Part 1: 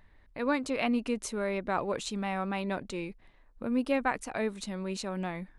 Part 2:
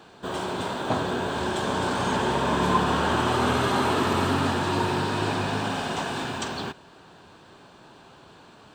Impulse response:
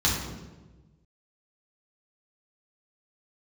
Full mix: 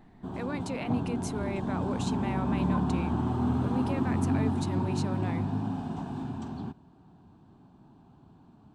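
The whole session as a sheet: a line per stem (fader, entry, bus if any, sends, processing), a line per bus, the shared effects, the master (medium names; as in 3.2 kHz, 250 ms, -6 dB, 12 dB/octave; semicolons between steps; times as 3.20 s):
-2.0 dB, 0.00 s, no send, peak limiter -25 dBFS, peak gain reduction 9.5 dB
+0.5 dB, 0.00 s, no send, FFT filter 260 Hz 0 dB, 530 Hz -20 dB, 760 Hz -9 dB, 1.8 kHz -24 dB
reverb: none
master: none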